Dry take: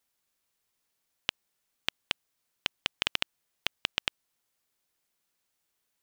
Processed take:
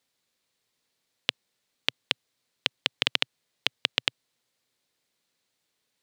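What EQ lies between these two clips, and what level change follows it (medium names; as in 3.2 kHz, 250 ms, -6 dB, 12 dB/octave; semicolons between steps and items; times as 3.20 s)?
graphic EQ 125/250/500/1000/2000/4000/8000 Hz +11/+8/+10/+4/+7/+11/+5 dB; -6.0 dB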